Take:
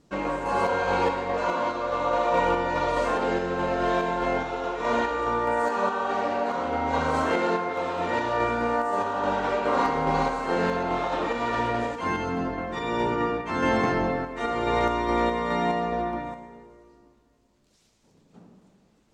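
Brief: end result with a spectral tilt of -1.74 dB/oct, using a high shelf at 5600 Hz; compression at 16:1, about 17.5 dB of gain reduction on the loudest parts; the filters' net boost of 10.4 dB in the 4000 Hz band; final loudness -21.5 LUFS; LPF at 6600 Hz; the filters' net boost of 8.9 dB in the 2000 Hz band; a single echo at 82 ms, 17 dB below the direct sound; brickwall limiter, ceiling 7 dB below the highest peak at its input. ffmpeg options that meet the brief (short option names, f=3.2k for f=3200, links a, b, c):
-af "lowpass=6.6k,equalizer=f=2k:t=o:g=8.5,equalizer=f=4k:t=o:g=8,highshelf=f=5.6k:g=7,acompressor=threshold=-34dB:ratio=16,alimiter=level_in=6.5dB:limit=-24dB:level=0:latency=1,volume=-6.5dB,aecho=1:1:82:0.141,volume=17.5dB"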